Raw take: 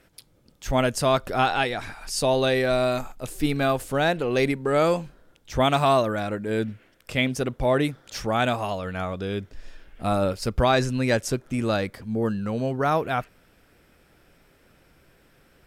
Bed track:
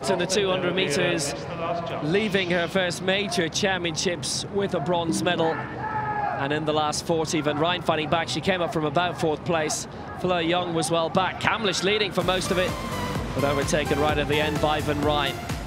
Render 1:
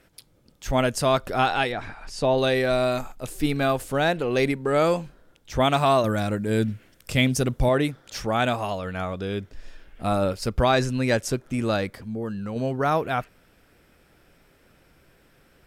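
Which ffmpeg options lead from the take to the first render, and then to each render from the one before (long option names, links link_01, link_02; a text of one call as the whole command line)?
ffmpeg -i in.wav -filter_complex "[0:a]asettb=1/sr,asplit=3[link_01][link_02][link_03];[link_01]atrim=end=1.724[link_04];[link_02]atrim=start=1.72:end=2.38,asetpts=PTS-STARTPTS,afade=type=in:duration=0.004:curve=qsin,afade=type=out:start_time=0.656:duration=0.004:curve=qsin,aemphasis=mode=reproduction:type=75fm[link_05];[link_03]atrim=start=2.376[link_06];[link_04][link_05]acrossfade=duration=0.004:curve1=hsin:curve2=qsin[link_07];[link_07][link_06]acrossfade=duration=0.004:curve1=qsin:curve2=hsin,asettb=1/sr,asplit=3[link_08][link_09][link_10];[link_08]atrim=end=6.044[link_11];[link_09]atrim=start=6.04:end=7.69,asetpts=PTS-STARTPTS,afade=type=in:duration=0.004:curve=qsin,afade=type=out:start_time=1.646:duration=0.004:curve=qsin,bass=frequency=250:gain=7,treble=frequency=4000:gain=8[link_12];[link_10]atrim=start=7.686[link_13];[link_11][link_12]acrossfade=duration=0.004:curve1=hsin:curve2=qsin[link_14];[link_14][link_13]acrossfade=duration=0.004:curve1=qsin:curve2=hsin,asettb=1/sr,asplit=3[link_15][link_16][link_17];[link_15]atrim=end=11.934[link_18];[link_16]atrim=start=11.93:end=12.56,asetpts=PTS-STARTPTS,afade=type=in:duration=0.004:curve=qsin,afade=type=out:start_time=0.626:duration=0.004:curve=qsin,acompressor=threshold=-30dB:ratio=2:attack=3.2:release=140:knee=1:detection=peak[link_19];[link_17]atrim=start=12.556[link_20];[link_18][link_19]acrossfade=duration=0.004:curve1=hsin:curve2=qsin[link_21];[link_21][link_20]acrossfade=duration=0.004:curve1=qsin:curve2=hsin" out.wav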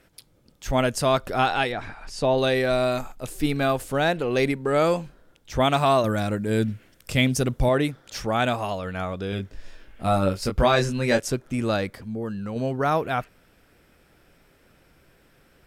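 ffmpeg -i in.wav -filter_complex "[0:a]asettb=1/sr,asplit=3[link_01][link_02][link_03];[link_01]atrim=end=9.304[link_04];[link_02]atrim=start=9.3:end=11.2,asetpts=PTS-STARTPTS,afade=type=in:duration=0.004:curve=qsin,afade=type=out:start_time=1.896:duration=0.004:curve=qsin,asplit=2[link_05][link_06];[link_06]adelay=21,volume=-4.5dB[link_07];[link_05][link_07]amix=inputs=2:normalize=0,atrim=end_sample=83790[link_08];[link_03]atrim=start=11.196[link_09];[link_04][link_08]acrossfade=duration=0.004:curve1=hsin:curve2=qsin[link_10];[link_10][link_09]acrossfade=duration=0.004:curve1=qsin:curve2=hsin" out.wav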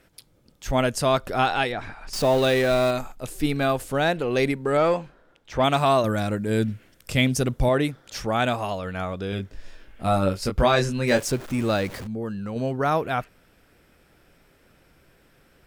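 ffmpeg -i in.wav -filter_complex "[0:a]asettb=1/sr,asplit=3[link_01][link_02][link_03];[link_01]atrim=end=2.134[link_04];[link_02]atrim=start=2.13:end=2.91,asetpts=PTS-STARTPTS,afade=type=in:duration=0.004:curve=qsin,afade=type=out:start_time=0.776:duration=0.004:curve=qsin,aeval=exprs='val(0)+0.5*0.0398*sgn(val(0))':channel_layout=same[link_05];[link_03]atrim=start=2.906[link_06];[link_04][link_05]acrossfade=duration=0.004:curve1=hsin:curve2=qsin[link_07];[link_07][link_06]acrossfade=duration=0.004:curve1=qsin:curve2=hsin,asettb=1/sr,asplit=3[link_08][link_09][link_10];[link_08]atrim=end=4.774[link_11];[link_09]atrim=start=4.77:end=5.64,asetpts=PTS-STARTPTS,afade=type=in:duration=0.004:curve=qsin,afade=type=out:start_time=0.866:duration=0.004:curve=qsin,asplit=2[link_12][link_13];[link_13]highpass=frequency=720:poles=1,volume=10dB,asoftclip=type=tanh:threshold=-9.5dB[link_14];[link_12][link_14]amix=inputs=2:normalize=0,lowpass=frequency=1600:poles=1,volume=-6dB[link_15];[link_10]atrim=start=5.636[link_16];[link_11][link_15]acrossfade=duration=0.004:curve1=hsin:curve2=qsin[link_17];[link_17][link_16]acrossfade=duration=0.004:curve1=qsin:curve2=hsin,asettb=1/sr,asplit=3[link_18][link_19][link_20];[link_18]atrim=end=11.074[link_21];[link_19]atrim=start=11.07:end=12.07,asetpts=PTS-STARTPTS,afade=type=in:duration=0.004:curve=qsin,afade=type=out:start_time=0.996:duration=0.004:curve=qsin,aeval=exprs='val(0)+0.5*0.02*sgn(val(0))':channel_layout=same[link_22];[link_20]atrim=start=12.066[link_23];[link_21][link_22]acrossfade=duration=0.004:curve1=hsin:curve2=qsin[link_24];[link_24][link_23]acrossfade=duration=0.004:curve1=qsin:curve2=hsin" out.wav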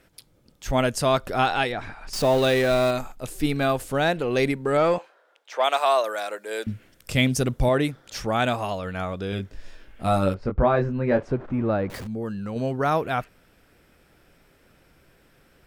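ffmpeg -i in.wav -filter_complex "[0:a]asettb=1/sr,asplit=3[link_01][link_02][link_03];[link_01]atrim=end=4.984[link_04];[link_02]atrim=start=4.98:end=6.67,asetpts=PTS-STARTPTS,afade=type=in:duration=0.004:curve=qsin,afade=type=out:start_time=1.686:duration=0.004:curve=qsin,highpass=frequency=480:width=0.5412,highpass=frequency=480:width=1.3066[link_05];[link_03]atrim=start=6.666[link_06];[link_04][link_05]acrossfade=duration=0.004:curve1=hsin:curve2=qsin[link_07];[link_07][link_06]acrossfade=duration=0.004:curve1=qsin:curve2=hsin,asettb=1/sr,asplit=3[link_08][link_09][link_10];[link_08]atrim=end=10.344[link_11];[link_09]atrim=start=10.34:end=11.9,asetpts=PTS-STARTPTS,afade=type=in:duration=0.004:curve=qsin,afade=type=out:start_time=1.556:duration=0.004:curve=qsin,lowpass=1300[link_12];[link_10]atrim=start=11.896[link_13];[link_11][link_12]acrossfade=duration=0.004:curve1=hsin:curve2=qsin[link_14];[link_14][link_13]acrossfade=duration=0.004:curve1=qsin:curve2=hsin" out.wav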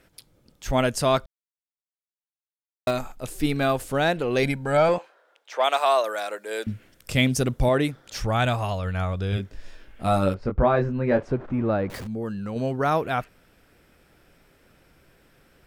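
ffmpeg -i in.wav -filter_complex "[0:a]asettb=1/sr,asplit=3[link_01][link_02][link_03];[link_01]atrim=end=4.434[link_04];[link_02]atrim=start=4.43:end=4.89,asetpts=PTS-STARTPTS,afade=type=in:duration=0.004:curve=qsin,afade=type=out:start_time=0.456:duration=0.004:curve=qsin,aecho=1:1:1.3:0.65,atrim=end_sample=20286[link_05];[link_03]atrim=start=4.886[link_06];[link_04][link_05]acrossfade=duration=0.004:curve1=hsin:curve2=qsin[link_07];[link_07][link_06]acrossfade=duration=0.004:curve1=qsin:curve2=hsin,asplit=3[link_08][link_09][link_10];[link_08]afade=type=out:start_time=8.21:duration=0.02[link_11];[link_09]asubboost=boost=5:cutoff=110,afade=type=in:start_time=8.21:duration=0.02,afade=type=out:start_time=9.36:duration=0.02[link_12];[link_10]afade=type=in:start_time=9.36:duration=0.02[link_13];[link_11][link_12][link_13]amix=inputs=3:normalize=0,asplit=3[link_14][link_15][link_16];[link_14]atrim=end=1.26,asetpts=PTS-STARTPTS,afade=type=out:start_time=1.256:duration=0.004:curve=hsin[link_17];[link_15]atrim=start=1.26:end=2.87,asetpts=PTS-STARTPTS,volume=0[link_18];[link_16]atrim=start=2.87,asetpts=PTS-STARTPTS,afade=type=in:duration=0.004:curve=hsin[link_19];[link_17][link_18][link_19]concat=n=3:v=0:a=1" out.wav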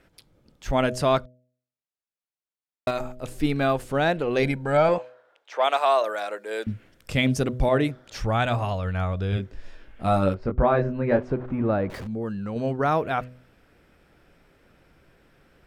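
ffmpeg -i in.wav -af "aemphasis=mode=reproduction:type=cd,bandreject=frequency=125.4:width_type=h:width=4,bandreject=frequency=250.8:width_type=h:width=4,bandreject=frequency=376.2:width_type=h:width=4,bandreject=frequency=501.6:width_type=h:width=4,bandreject=frequency=627:width_type=h:width=4" out.wav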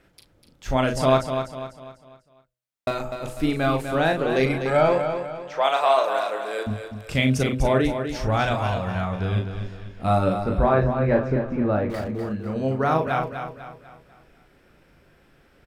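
ffmpeg -i in.wav -filter_complex "[0:a]asplit=2[link_01][link_02];[link_02]adelay=38,volume=-5.5dB[link_03];[link_01][link_03]amix=inputs=2:normalize=0,asplit=2[link_04][link_05];[link_05]aecho=0:1:248|496|744|992|1240:0.398|0.163|0.0669|0.0274|0.0112[link_06];[link_04][link_06]amix=inputs=2:normalize=0" out.wav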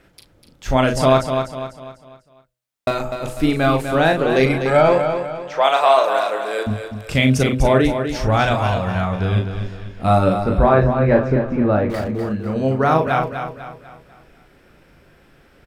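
ffmpeg -i in.wav -af "volume=5.5dB,alimiter=limit=-3dB:level=0:latency=1" out.wav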